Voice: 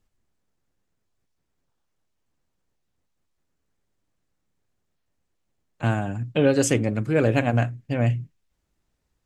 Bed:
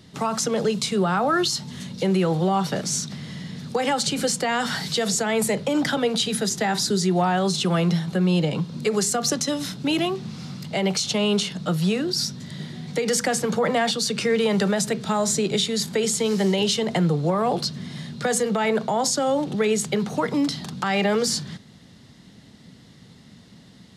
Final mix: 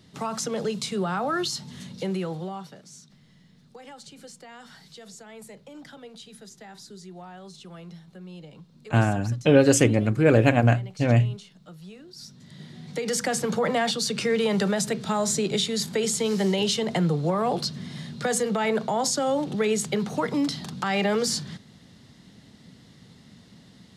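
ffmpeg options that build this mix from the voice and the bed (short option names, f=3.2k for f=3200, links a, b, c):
-filter_complex "[0:a]adelay=3100,volume=2.5dB[a];[1:a]volume=14dB,afade=t=out:st=1.91:d=0.86:silence=0.149624,afade=t=in:st=12.13:d=1.28:silence=0.105925[b];[a][b]amix=inputs=2:normalize=0"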